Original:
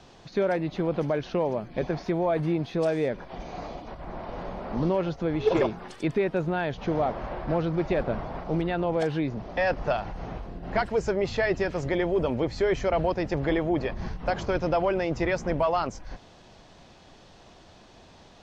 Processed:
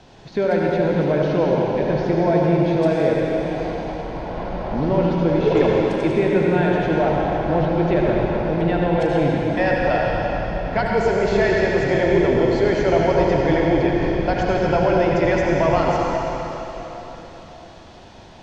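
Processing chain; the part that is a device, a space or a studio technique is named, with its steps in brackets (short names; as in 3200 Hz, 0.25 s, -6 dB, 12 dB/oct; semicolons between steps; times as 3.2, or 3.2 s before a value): notch 1200 Hz, Q 9.4; swimming-pool hall (reverb RT60 3.9 s, pre-delay 65 ms, DRR -3 dB; high shelf 5300 Hz -5.5 dB); gain +4 dB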